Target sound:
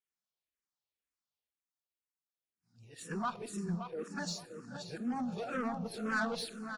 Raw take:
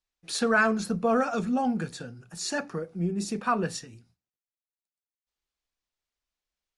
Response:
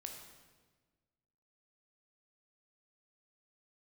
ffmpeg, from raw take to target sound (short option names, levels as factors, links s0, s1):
-filter_complex "[0:a]areverse,highpass=91,asoftclip=type=tanh:threshold=0.075,asplit=2[s0][s1];[s1]adelay=573,lowpass=f=4000:p=1,volume=0.422,asplit=2[s2][s3];[s3]adelay=573,lowpass=f=4000:p=1,volume=0.39,asplit=2[s4][s5];[s5]adelay=573,lowpass=f=4000:p=1,volume=0.39,asplit=2[s6][s7];[s7]adelay=573,lowpass=f=4000:p=1,volume=0.39[s8];[s0][s2][s4][s6][s8]amix=inputs=5:normalize=0,asplit=2[s9][s10];[1:a]atrim=start_sample=2205[s11];[s10][s11]afir=irnorm=-1:irlink=0,volume=0.562[s12];[s9][s12]amix=inputs=2:normalize=0,asplit=2[s13][s14];[s14]afreqshift=-2[s15];[s13][s15]amix=inputs=2:normalize=1,volume=0.422"